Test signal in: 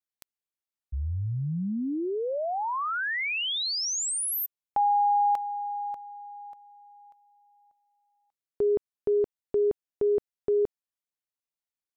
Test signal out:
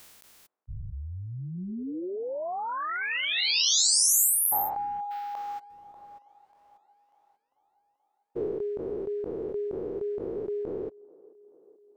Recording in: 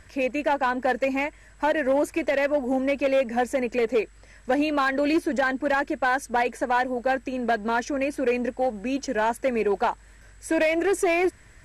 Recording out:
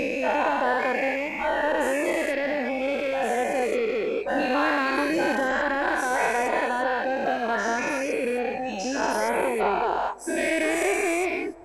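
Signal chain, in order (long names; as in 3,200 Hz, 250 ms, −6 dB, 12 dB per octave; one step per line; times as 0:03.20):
every bin's largest magnitude spread in time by 480 ms
reverb reduction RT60 1.6 s
delay with a band-pass on its return 434 ms, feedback 68%, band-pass 580 Hz, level −22.5 dB
level −5.5 dB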